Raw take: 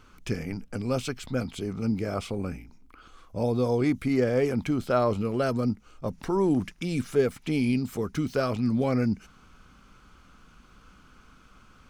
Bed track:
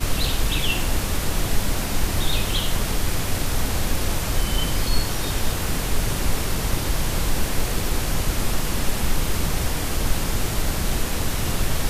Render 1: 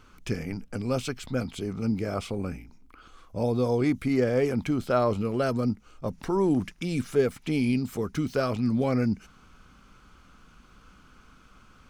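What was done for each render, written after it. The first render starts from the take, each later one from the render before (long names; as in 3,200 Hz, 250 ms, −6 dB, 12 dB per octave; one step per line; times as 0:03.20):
no processing that can be heard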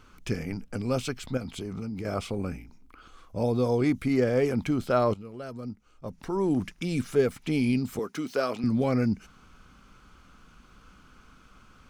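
0:01.37–0:02.05: downward compressor 10 to 1, threshold −30 dBFS
0:05.14–0:06.71: fade in quadratic, from −14 dB
0:07.99–0:08.64: high-pass filter 300 Hz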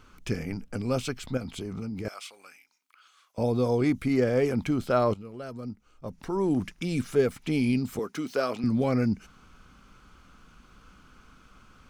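0:02.08–0:03.38: Bessel high-pass filter 2,000 Hz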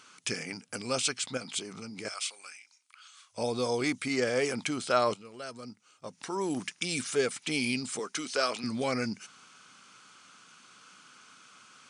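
brick-wall band-pass 100–10,000 Hz
spectral tilt +4 dB per octave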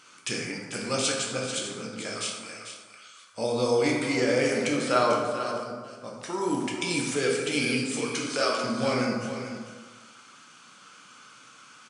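on a send: single-tap delay 443 ms −10 dB
on the sum: dense smooth reverb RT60 1.4 s, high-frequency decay 0.5×, DRR −2 dB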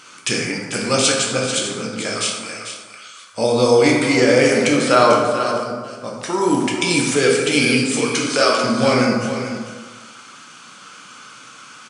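level +10.5 dB
brickwall limiter −1 dBFS, peak gain reduction 2.5 dB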